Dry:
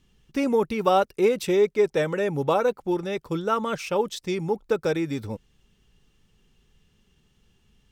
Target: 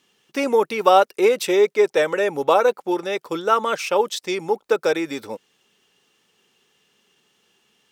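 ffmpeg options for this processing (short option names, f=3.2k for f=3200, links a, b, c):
-af "highpass=420,volume=7dB"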